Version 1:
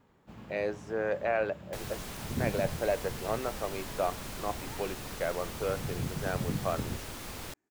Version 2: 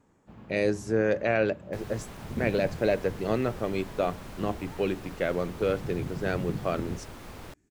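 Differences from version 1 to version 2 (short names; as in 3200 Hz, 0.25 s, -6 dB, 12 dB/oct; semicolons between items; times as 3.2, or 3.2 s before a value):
speech: remove band-pass 860 Hz, Q 1.5; master: add high shelf 2700 Hz -10.5 dB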